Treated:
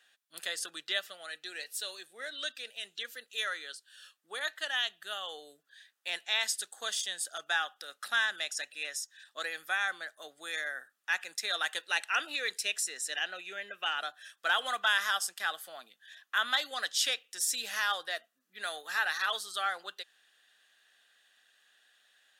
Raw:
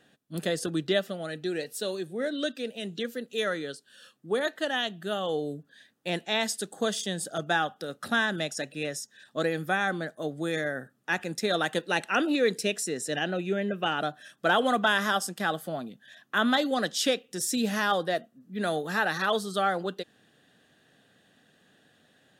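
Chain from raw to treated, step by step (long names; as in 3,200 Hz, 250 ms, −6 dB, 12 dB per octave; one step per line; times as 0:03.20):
high-pass filter 1,400 Hz 12 dB per octave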